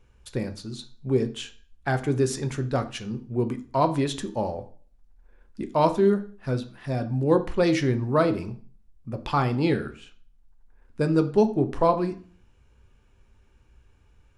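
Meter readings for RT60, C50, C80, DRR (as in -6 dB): 0.45 s, 15.0 dB, 19.0 dB, 8.0 dB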